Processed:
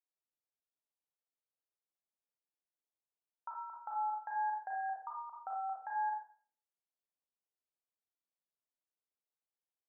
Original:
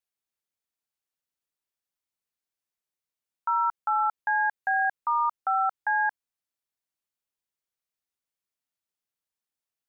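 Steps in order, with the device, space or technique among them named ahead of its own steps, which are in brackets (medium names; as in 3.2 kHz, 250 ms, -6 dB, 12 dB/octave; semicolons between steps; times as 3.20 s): low-pass 1.2 kHz 12 dB/octave; television next door (compression, threshold -30 dBFS, peak gain reduction 6.5 dB; low-pass 570 Hz 12 dB/octave; reverberation RT60 0.50 s, pre-delay 33 ms, DRR -2.5 dB); differentiator; trim +16.5 dB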